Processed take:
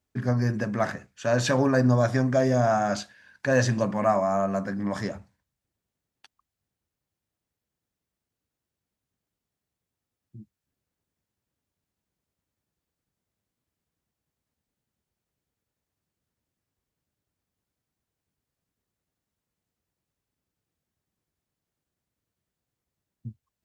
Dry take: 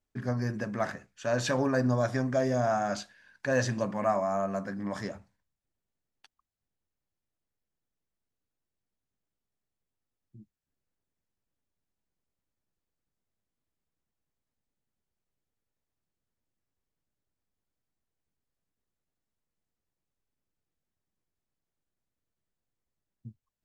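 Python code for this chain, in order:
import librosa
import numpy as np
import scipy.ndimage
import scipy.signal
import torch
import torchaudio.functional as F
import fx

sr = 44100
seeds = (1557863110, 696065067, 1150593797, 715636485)

y = scipy.signal.sosfilt(scipy.signal.butter(2, 69.0, 'highpass', fs=sr, output='sos'), x)
y = fx.low_shelf(y, sr, hz=110.0, db=7.0)
y = F.gain(torch.from_numpy(y), 4.5).numpy()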